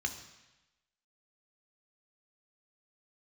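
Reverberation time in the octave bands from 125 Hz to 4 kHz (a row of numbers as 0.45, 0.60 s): 1.0, 1.0, 0.95, 1.1, 1.1, 1.1 s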